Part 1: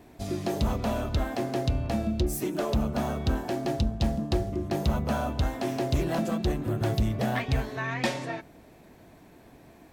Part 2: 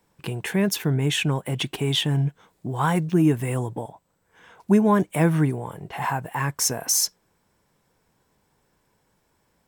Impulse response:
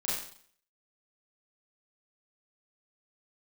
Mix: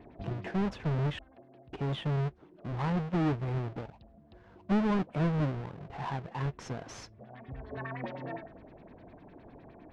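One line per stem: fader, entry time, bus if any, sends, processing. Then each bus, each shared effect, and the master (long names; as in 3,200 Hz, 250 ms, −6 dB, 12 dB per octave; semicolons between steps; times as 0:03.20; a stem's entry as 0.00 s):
+1.0 dB, 0.00 s, no send, hum removal 73.31 Hz, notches 29; downward compressor 8 to 1, threshold −35 dBFS, peak gain reduction 14 dB; auto-filter low-pass sine 9.8 Hz 560–4,700 Hz; automatic ducking −19 dB, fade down 1.45 s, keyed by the second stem
−10.5 dB, 0.00 s, muted 0:01.19–0:01.72, no send, each half-wave held at its own peak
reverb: not used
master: soft clipping −21 dBFS, distortion −20 dB; head-to-tape spacing loss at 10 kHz 33 dB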